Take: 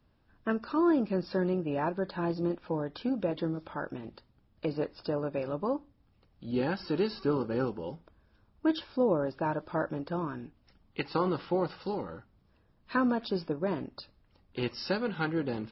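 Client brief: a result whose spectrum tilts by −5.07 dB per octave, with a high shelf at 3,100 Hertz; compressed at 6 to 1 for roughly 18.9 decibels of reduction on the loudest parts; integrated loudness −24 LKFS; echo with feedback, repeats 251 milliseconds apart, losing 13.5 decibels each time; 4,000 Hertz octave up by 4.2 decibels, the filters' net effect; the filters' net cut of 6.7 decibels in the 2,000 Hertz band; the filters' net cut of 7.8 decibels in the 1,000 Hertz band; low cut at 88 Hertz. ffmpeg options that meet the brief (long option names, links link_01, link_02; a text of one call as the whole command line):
ffmpeg -i in.wav -af "highpass=88,equalizer=frequency=1000:width_type=o:gain=-8.5,equalizer=frequency=2000:width_type=o:gain=-8,highshelf=frequency=3100:gain=4,equalizer=frequency=4000:width_type=o:gain=4.5,acompressor=threshold=-45dB:ratio=6,aecho=1:1:251|502:0.211|0.0444,volume=24.5dB" out.wav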